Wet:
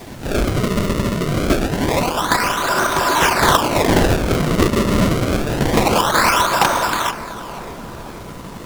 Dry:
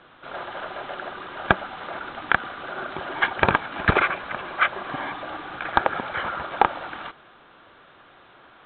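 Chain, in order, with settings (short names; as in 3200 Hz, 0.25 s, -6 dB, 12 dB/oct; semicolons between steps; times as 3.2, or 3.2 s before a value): notch 780 Hz, Q 14; small resonant body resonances 1000/3600 Hz, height 12 dB; in parallel at -4 dB: sine folder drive 17 dB, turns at -4 dBFS; on the sum: decimation with a swept rate 31×, swing 160% 0.26 Hz; added noise pink -38 dBFS; on a send: darkening echo 0.479 s, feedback 73%, low-pass 2000 Hz, level -16.5 dB; on the sum: Doppler distortion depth 0.36 ms; gain -3 dB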